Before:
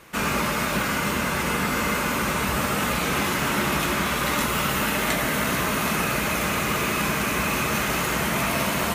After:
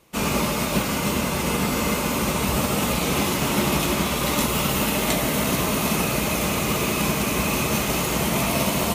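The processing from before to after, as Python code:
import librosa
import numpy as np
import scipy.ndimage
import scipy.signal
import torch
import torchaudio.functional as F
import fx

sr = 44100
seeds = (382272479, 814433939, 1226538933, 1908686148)

y = fx.peak_eq(x, sr, hz=1600.0, db=-11.0, octaves=0.89)
y = fx.upward_expand(y, sr, threshold_db=-46.0, expansion=1.5)
y = y * 10.0 ** (5.0 / 20.0)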